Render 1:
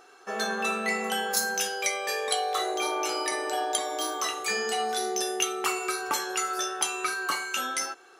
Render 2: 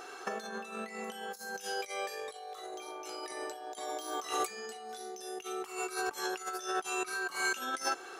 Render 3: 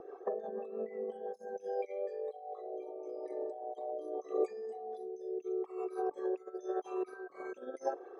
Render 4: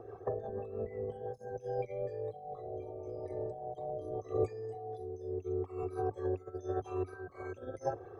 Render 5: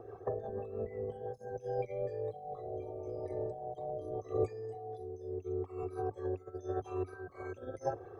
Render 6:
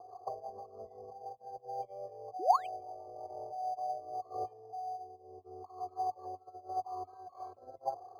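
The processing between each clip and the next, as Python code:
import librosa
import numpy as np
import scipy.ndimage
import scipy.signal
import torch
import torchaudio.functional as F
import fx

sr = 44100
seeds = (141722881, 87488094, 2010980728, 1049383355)

y1 = fx.dynamic_eq(x, sr, hz=2200.0, q=0.75, threshold_db=-44.0, ratio=4.0, max_db=-3)
y1 = fx.over_compress(y1, sr, threshold_db=-37.0, ratio=-0.5)
y2 = fx.envelope_sharpen(y1, sr, power=2.0)
y2 = fx.rotary_switch(y2, sr, hz=6.0, then_hz=0.9, switch_at_s=1.17)
y2 = np.convolve(y2, np.full(31, 1.0 / 31))[:len(y2)]
y2 = y2 * librosa.db_to_amplitude(5.5)
y3 = fx.octave_divider(y2, sr, octaves=2, level_db=-1.0)
y4 = fx.rider(y3, sr, range_db=10, speed_s=2.0)
y4 = y4 * librosa.db_to_amplitude(-1.0)
y5 = fx.spec_paint(y4, sr, seeds[0], shape='rise', start_s=2.39, length_s=0.29, low_hz=310.0, high_hz=3000.0, level_db=-27.0)
y5 = fx.formant_cascade(y5, sr, vowel='a')
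y5 = np.interp(np.arange(len(y5)), np.arange(len(y5))[::8], y5[::8])
y5 = y5 * librosa.db_to_amplitude(10.0)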